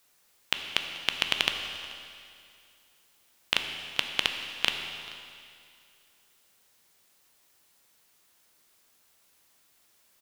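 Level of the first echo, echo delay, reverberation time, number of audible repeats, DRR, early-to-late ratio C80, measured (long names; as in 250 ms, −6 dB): −21.5 dB, 434 ms, 2.3 s, 1, 4.5 dB, 6.5 dB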